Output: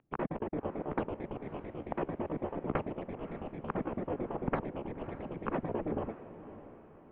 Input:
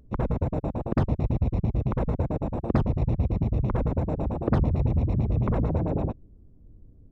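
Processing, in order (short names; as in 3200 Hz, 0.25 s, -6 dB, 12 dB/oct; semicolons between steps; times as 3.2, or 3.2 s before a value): trilling pitch shifter +5 st, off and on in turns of 0.116 s; mistuned SSB -310 Hz 510–3100 Hz; diffused feedback echo 0.568 s, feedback 45%, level -13.5 dB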